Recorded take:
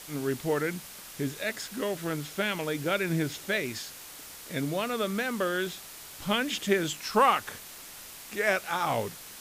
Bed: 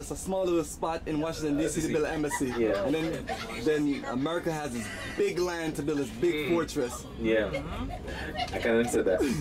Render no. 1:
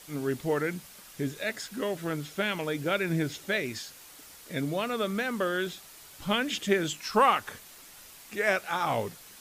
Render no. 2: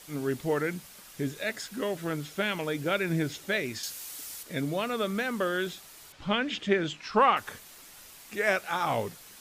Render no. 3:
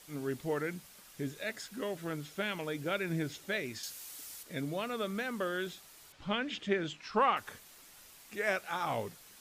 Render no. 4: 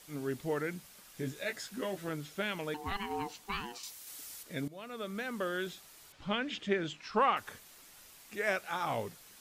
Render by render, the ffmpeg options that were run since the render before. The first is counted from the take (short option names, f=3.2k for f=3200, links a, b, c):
-af "afftdn=nr=6:nf=-46"
-filter_complex "[0:a]asettb=1/sr,asplit=3[a][b][c];[a]atrim=end=3.834[d];[b]atrim=start=3.83:end=4.43,asetpts=PTS-STARTPTS,afade=t=in:d=0.004:c=qsin,afade=t=out:st=0.596:d=0.004:c=qsin,highshelf=f=3.2k:g=11[e];[c]atrim=start=4.426[f];[d][e]acrossfade=d=0.004:c1=hsin:c2=qsin[g];[g][f]acrossfade=d=0.004:c1=qsin:c2=hsin,asettb=1/sr,asplit=3[h][i][j];[h]atrim=end=6.124[k];[i]atrim=start=6.12:end=7.37,asetpts=PTS-STARTPTS,afade=t=in:d=0.004:c=qsin,afade=t=out:st=1.246:d=0.004:c=qsin,lowpass=4k[l];[j]atrim=start=7.366[m];[k][l]acrossfade=d=0.004:c1=hsin:c2=qsin[n];[n][m]acrossfade=d=0.004:c1=qsin:c2=hsin"
-af "volume=-6dB"
-filter_complex "[0:a]asettb=1/sr,asplit=3[a][b][c];[a]atrim=end=1.144[d];[b]atrim=start=1.14:end=2.09,asetpts=PTS-STARTPTS,afade=t=in:d=0.004:c=qsin,afade=t=out:st=0.946:d=0.004:c=qsin,asplit=2[e][f];[f]adelay=16,volume=-5dB[g];[e][g]amix=inputs=2:normalize=0,atrim=end_sample=41895[h];[c]atrim=start=2.086[i];[d][h]acrossfade=d=0.004:c1=hsin:c2=qsin[j];[j][i]acrossfade=d=0.004:c1=qsin:c2=hsin,asettb=1/sr,asplit=3[k][l][m];[k]atrim=end=2.744[n];[l]atrim=start=2.74:end=4.07,asetpts=PTS-STARTPTS,afade=t=in:d=0.004:c=qsin,afade=t=out:st=1.326:d=0.004:c=qsin,aeval=exprs='val(0)*sin(2*PI*600*n/s)':c=same[o];[m]atrim=start=4.066[p];[n][o]acrossfade=d=0.004:c1=hsin:c2=qsin[q];[q][p]acrossfade=d=0.004:c1=qsin:c2=hsin,asplit=2[r][s];[r]atrim=end=4.68,asetpts=PTS-STARTPTS,afade=t=out:st=4.676:d=0.004:c=hsin:silence=0.141254[t];[s]atrim=start=4.68,asetpts=PTS-STARTPTS,afade=t=in:d=0.97:c=qsin:silence=0.141254[u];[t][u]concat=n=2:v=0:a=1"